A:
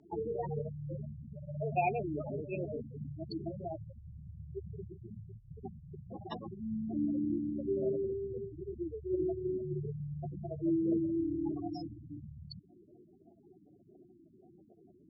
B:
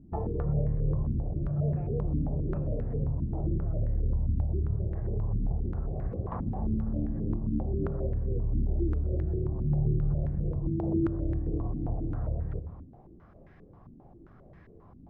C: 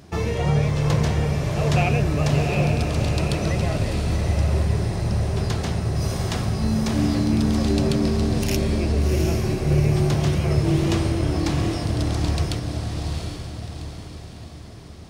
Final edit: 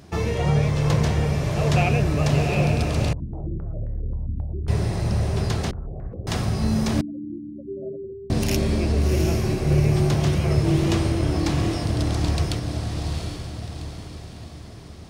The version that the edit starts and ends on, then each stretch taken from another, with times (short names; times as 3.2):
C
3.13–4.68 from B
5.71–6.27 from B
7.01–8.3 from A